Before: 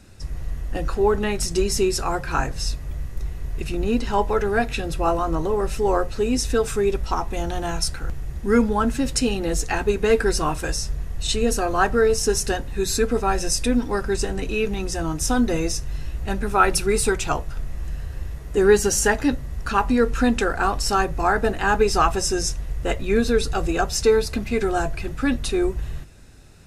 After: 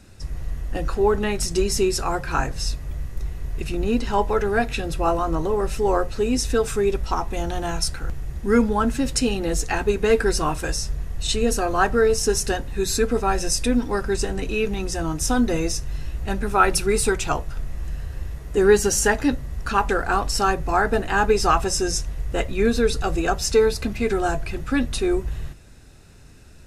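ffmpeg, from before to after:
ffmpeg -i in.wav -filter_complex "[0:a]asplit=2[link_01][link_02];[link_01]atrim=end=19.892[link_03];[link_02]atrim=start=20.398[link_04];[link_03][link_04]acrossfade=duration=0.004:curve1=hsin:curve2=hsin" out.wav

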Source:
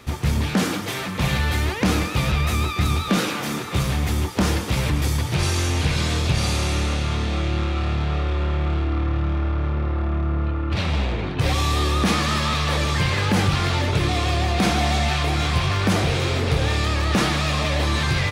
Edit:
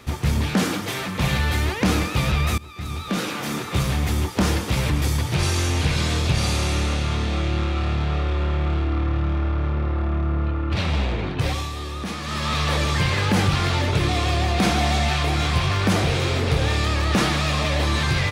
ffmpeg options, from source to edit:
ffmpeg -i in.wav -filter_complex "[0:a]asplit=4[link_01][link_02][link_03][link_04];[link_01]atrim=end=2.58,asetpts=PTS-STARTPTS,afade=type=out:start_time=2.576:duration=0.004:curve=hsin:silence=0.0668344[link_05];[link_02]atrim=start=2.58:end=11.71,asetpts=PTS-STARTPTS,afade=type=in:duration=1.01:silence=0.0668344,afade=type=out:start_time=8.74:duration=0.39:silence=0.316228[link_06];[link_03]atrim=start=11.71:end=12.21,asetpts=PTS-STARTPTS,volume=-10dB[link_07];[link_04]atrim=start=12.21,asetpts=PTS-STARTPTS,afade=type=in:duration=0.39:silence=0.316228[link_08];[link_05][link_06][link_07][link_08]concat=n=4:v=0:a=1" out.wav

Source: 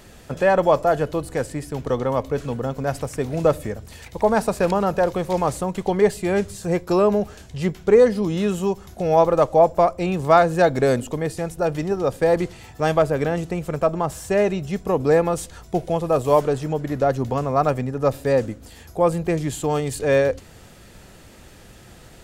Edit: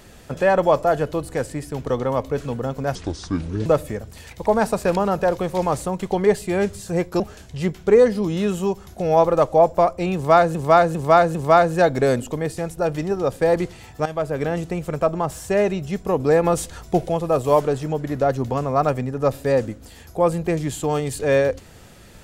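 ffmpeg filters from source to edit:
ffmpeg -i in.wav -filter_complex "[0:a]asplit=10[link_01][link_02][link_03][link_04][link_05][link_06][link_07][link_08][link_09][link_10];[link_01]atrim=end=2.954[link_11];[link_02]atrim=start=2.95:end=3.41,asetpts=PTS-STARTPTS,asetrate=28665,aresample=44100,atrim=end_sample=31209,asetpts=PTS-STARTPTS[link_12];[link_03]atrim=start=3.406:end=6.952[link_13];[link_04]atrim=start=7.198:end=10.552[link_14];[link_05]atrim=start=10.148:end=10.552[link_15];[link_06]atrim=start=10.148:end=10.552[link_16];[link_07]atrim=start=10.148:end=12.86,asetpts=PTS-STARTPTS,afade=type=out:start_time=2.708:duration=0.004:curve=hsin:silence=0.199526[link_17];[link_08]atrim=start=12.86:end=15.242,asetpts=PTS-STARTPTS,afade=type=in:duration=0.64:curve=qsin:silence=0.199526[link_18];[link_09]atrim=start=15.238:end=15.892,asetpts=PTS-STARTPTS,volume=3.5dB[link_19];[link_10]atrim=start=15.888[link_20];[link_11][link_12]acrossfade=duration=0.004:curve1=hsin:curve2=hsin[link_21];[link_21][link_13]acrossfade=duration=0.004:curve1=hsin:curve2=hsin[link_22];[link_22][link_14]acrossfade=duration=0.004:curve1=hsin:curve2=hsin[link_23];[link_23][link_15]acrossfade=duration=0.004:curve1=hsin:curve2=hsin[link_24];[link_24][link_16]acrossfade=duration=0.004:curve1=hsin:curve2=hsin[link_25];[link_17][link_18]concat=n=2:v=0:a=1[link_26];[link_25][link_26]acrossfade=duration=0.004:curve1=hsin:curve2=hsin[link_27];[link_27][link_19]acrossfade=duration=0.004:curve1=hsin:curve2=hsin[link_28];[link_28][link_20]acrossfade=duration=0.004:curve1=hsin:curve2=hsin" out.wav

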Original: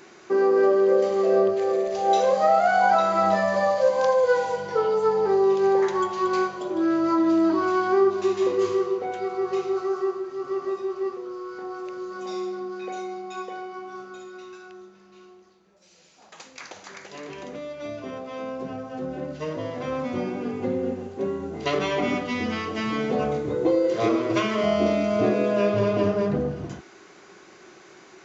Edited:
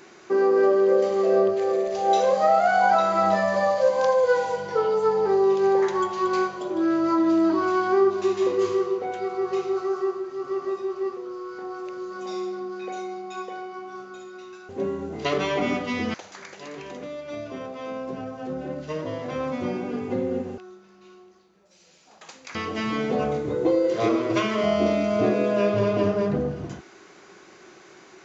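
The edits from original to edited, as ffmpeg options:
ffmpeg -i in.wav -filter_complex "[0:a]asplit=5[link_01][link_02][link_03][link_04][link_05];[link_01]atrim=end=14.692[link_06];[link_02]atrim=start=21.098:end=22.552[link_07];[link_03]atrim=start=16.658:end=21.102[link_08];[link_04]atrim=start=14.688:end=16.662[link_09];[link_05]atrim=start=22.548[link_10];[link_06][link_07]acrossfade=duration=0.004:curve1=hsin:curve2=hsin[link_11];[link_11][link_08]acrossfade=duration=0.004:curve1=hsin:curve2=hsin[link_12];[link_12][link_09]acrossfade=duration=0.004:curve1=hsin:curve2=hsin[link_13];[link_13][link_10]acrossfade=duration=0.004:curve1=hsin:curve2=hsin" out.wav

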